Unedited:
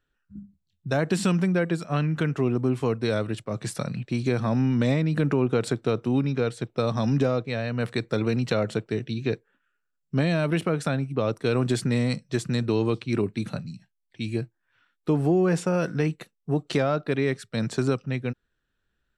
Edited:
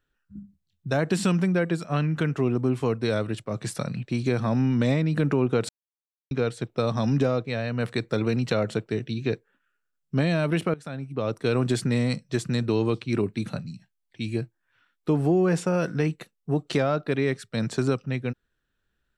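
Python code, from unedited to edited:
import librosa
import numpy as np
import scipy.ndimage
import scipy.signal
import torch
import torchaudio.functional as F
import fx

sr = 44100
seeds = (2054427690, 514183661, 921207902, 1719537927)

y = fx.edit(x, sr, fx.silence(start_s=5.69, length_s=0.62),
    fx.fade_in_from(start_s=10.74, length_s=0.69, floor_db=-18.5), tone=tone)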